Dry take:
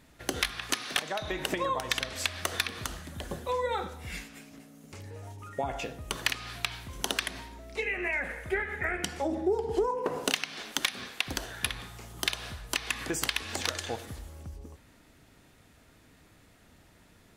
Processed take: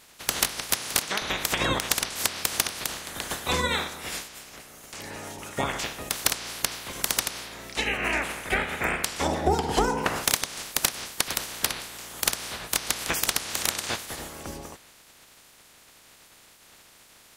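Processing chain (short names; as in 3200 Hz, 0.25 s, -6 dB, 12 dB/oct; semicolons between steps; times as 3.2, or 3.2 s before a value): spectral limiter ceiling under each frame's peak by 25 dB; gain +5 dB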